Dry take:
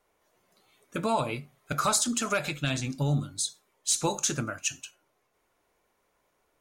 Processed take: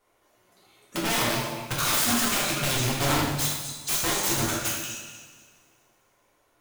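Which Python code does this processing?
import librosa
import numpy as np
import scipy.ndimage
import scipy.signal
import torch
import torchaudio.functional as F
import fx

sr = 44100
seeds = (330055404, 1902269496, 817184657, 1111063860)

y = fx.echo_feedback(x, sr, ms=244, feedback_pct=28, wet_db=-13)
y = (np.mod(10.0 ** (24.0 / 20.0) * y + 1.0, 2.0) - 1.0) / 10.0 ** (24.0 / 20.0)
y = fx.rev_double_slope(y, sr, seeds[0], early_s=0.99, late_s=2.5, knee_db=-17, drr_db=-4.5)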